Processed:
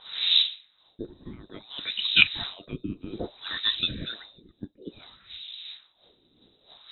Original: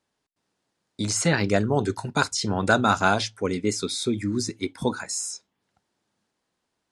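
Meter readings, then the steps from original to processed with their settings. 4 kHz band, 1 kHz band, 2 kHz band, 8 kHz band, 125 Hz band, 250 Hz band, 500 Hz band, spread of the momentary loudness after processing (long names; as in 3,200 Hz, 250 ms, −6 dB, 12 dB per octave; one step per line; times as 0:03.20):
+8.0 dB, −20.5 dB, −1.5 dB, below −40 dB, −14.5 dB, −13.5 dB, −17.5 dB, 24 LU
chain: wind on the microphone 270 Hz −26 dBFS
voice inversion scrambler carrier 3,900 Hz
auto-filter low-pass sine 0.59 Hz 290–2,900 Hz
level −1 dB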